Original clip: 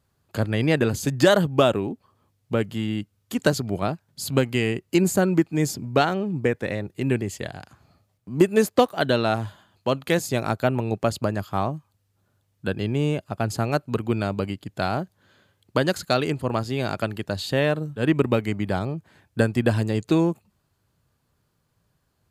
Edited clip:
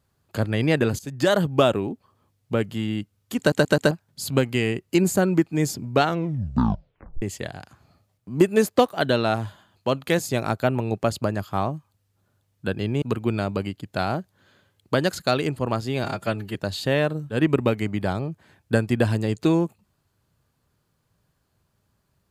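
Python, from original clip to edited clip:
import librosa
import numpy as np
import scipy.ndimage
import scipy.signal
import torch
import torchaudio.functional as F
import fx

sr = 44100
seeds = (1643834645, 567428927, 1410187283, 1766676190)

y = fx.edit(x, sr, fx.fade_in_from(start_s=0.99, length_s=0.47, floor_db=-15.5),
    fx.stutter_over(start_s=3.39, slice_s=0.13, count=4),
    fx.tape_stop(start_s=6.03, length_s=1.19),
    fx.cut(start_s=13.02, length_s=0.83),
    fx.stretch_span(start_s=16.87, length_s=0.34, factor=1.5), tone=tone)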